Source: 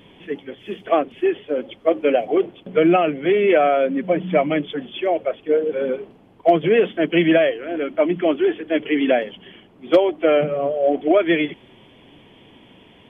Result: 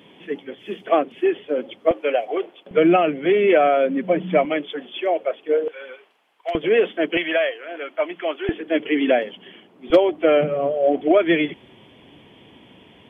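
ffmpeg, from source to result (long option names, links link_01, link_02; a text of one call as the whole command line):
ffmpeg -i in.wav -af "asetnsamples=nb_out_samples=441:pad=0,asendcmd='1.91 highpass f 530;2.71 highpass f 150;4.45 highpass f 360;5.68 highpass f 1300;6.55 highpass f 320;7.17 highpass f 700;8.49 highpass f 200;9.9 highpass f 52',highpass=170" out.wav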